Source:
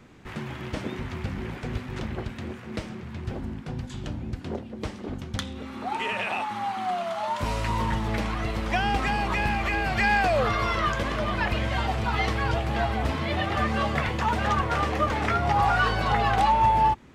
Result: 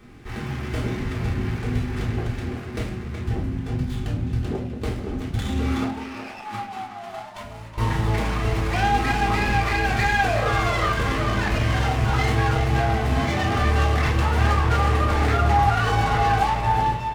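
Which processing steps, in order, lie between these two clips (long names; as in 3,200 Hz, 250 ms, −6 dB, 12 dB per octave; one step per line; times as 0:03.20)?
high-shelf EQ 5,000 Hz +7.5 dB
0:05.45–0:07.78: compressor whose output falls as the input rises −35 dBFS, ratio −0.5
far-end echo of a speakerphone 370 ms, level −8 dB
brickwall limiter −16.5 dBFS, peak gain reduction 7.5 dB
low-shelf EQ 140 Hz +6 dB
convolution reverb RT60 0.45 s, pre-delay 3 ms, DRR −3.5 dB
windowed peak hold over 5 samples
level −2 dB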